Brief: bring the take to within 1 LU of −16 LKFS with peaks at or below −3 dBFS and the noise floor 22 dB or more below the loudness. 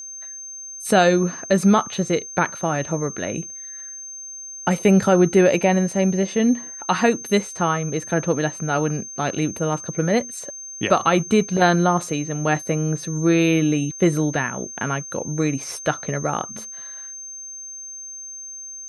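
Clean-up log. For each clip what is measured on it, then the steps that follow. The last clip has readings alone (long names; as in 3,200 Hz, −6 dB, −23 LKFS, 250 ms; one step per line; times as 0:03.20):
interfering tone 6,300 Hz; level of the tone −33 dBFS; integrated loudness −21.0 LKFS; sample peak −3.0 dBFS; target loudness −16.0 LKFS
→ notch filter 6,300 Hz, Q 30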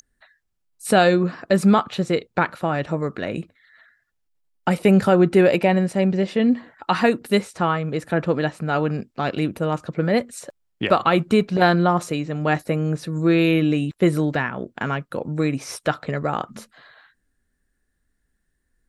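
interfering tone none found; integrated loudness −21.0 LKFS; sample peak −3.0 dBFS; target loudness −16.0 LKFS
→ level +5 dB
brickwall limiter −3 dBFS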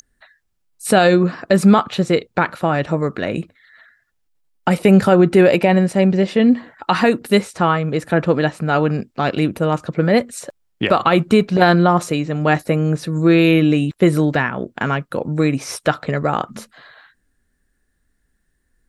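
integrated loudness −16.5 LKFS; sample peak −3.0 dBFS; background noise floor −68 dBFS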